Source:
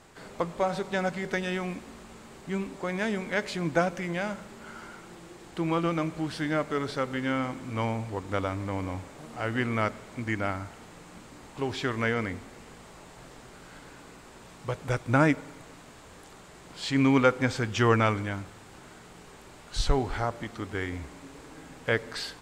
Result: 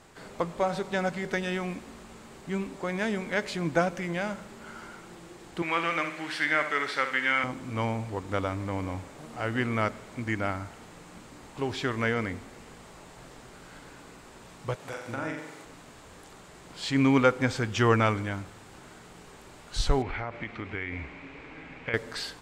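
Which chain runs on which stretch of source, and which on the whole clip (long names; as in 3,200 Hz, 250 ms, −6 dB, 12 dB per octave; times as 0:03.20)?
0:05.62–0:07.44: high-pass filter 700 Hz 6 dB per octave + parametric band 2,000 Hz +12 dB 1.1 octaves + flutter between parallel walls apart 11.4 metres, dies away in 0.44 s
0:14.75–0:15.65: high-pass filter 400 Hz 6 dB per octave + downward compressor 3 to 1, threshold −35 dBFS + flutter between parallel walls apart 7.6 metres, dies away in 0.73 s
0:20.02–0:21.94: low-pass filter 3,200 Hz + parametric band 2,300 Hz +13.5 dB 0.54 octaves + downward compressor 4 to 1, threshold −30 dBFS
whole clip: no processing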